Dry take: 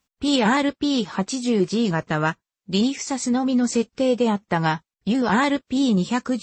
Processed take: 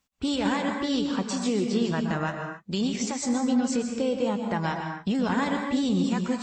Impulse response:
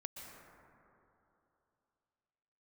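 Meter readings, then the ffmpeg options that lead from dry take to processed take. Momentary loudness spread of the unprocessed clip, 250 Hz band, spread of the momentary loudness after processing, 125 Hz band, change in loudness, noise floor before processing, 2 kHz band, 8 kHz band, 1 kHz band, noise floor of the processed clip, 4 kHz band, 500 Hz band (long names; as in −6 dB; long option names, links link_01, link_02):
5 LU, −4.5 dB, 5 LU, −5.0 dB, −5.0 dB, below −85 dBFS, −6.5 dB, −4.0 dB, −6.5 dB, −49 dBFS, −6.0 dB, −5.5 dB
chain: -filter_complex "[0:a]alimiter=limit=-16.5dB:level=0:latency=1:release=273[link_01];[1:a]atrim=start_sample=2205,afade=type=out:start_time=0.34:duration=0.01,atrim=end_sample=15435[link_02];[link_01][link_02]afir=irnorm=-1:irlink=0,volume=3.5dB"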